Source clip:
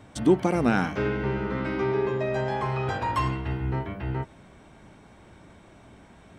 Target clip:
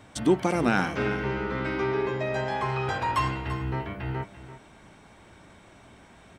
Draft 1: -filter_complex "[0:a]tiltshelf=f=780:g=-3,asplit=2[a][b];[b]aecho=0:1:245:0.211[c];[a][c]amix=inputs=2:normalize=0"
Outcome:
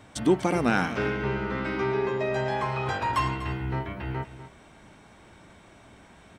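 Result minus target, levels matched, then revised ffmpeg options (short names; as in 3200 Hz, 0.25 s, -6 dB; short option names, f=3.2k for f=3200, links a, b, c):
echo 95 ms early
-filter_complex "[0:a]tiltshelf=f=780:g=-3,asplit=2[a][b];[b]aecho=0:1:340:0.211[c];[a][c]amix=inputs=2:normalize=0"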